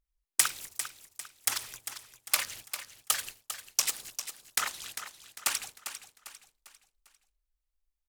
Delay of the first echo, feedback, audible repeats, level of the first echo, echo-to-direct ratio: 399 ms, 41%, 4, −10.5 dB, −9.5 dB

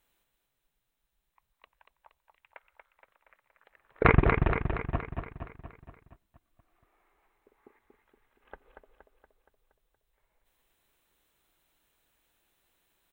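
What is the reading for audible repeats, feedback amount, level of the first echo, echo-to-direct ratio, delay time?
7, 57%, −5.5 dB, −4.0 dB, 235 ms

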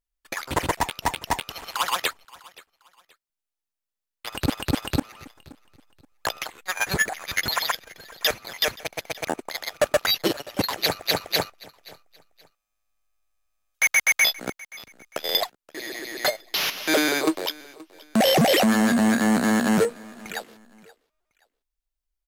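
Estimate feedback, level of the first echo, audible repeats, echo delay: 30%, −22.0 dB, 2, 526 ms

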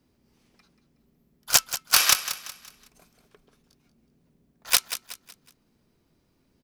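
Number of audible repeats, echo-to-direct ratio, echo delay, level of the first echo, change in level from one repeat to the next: 3, −11.5 dB, 185 ms, −12.0 dB, −8.5 dB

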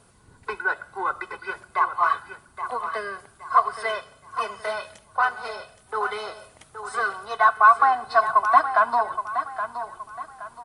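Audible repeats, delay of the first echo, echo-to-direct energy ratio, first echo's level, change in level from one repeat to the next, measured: 3, 821 ms, −9.5 dB, −10.0 dB, −9.5 dB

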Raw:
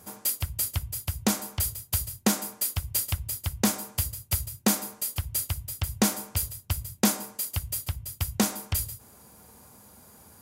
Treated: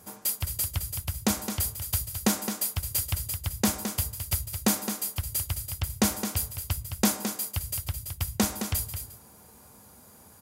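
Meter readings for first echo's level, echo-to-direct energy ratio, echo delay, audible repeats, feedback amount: −8.0 dB, −8.0 dB, 215 ms, 1, repeats not evenly spaced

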